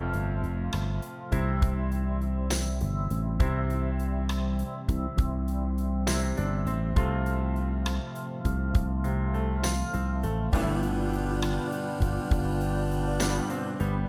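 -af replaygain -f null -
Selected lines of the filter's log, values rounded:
track_gain = +13.4 dB
track_peak = 0.178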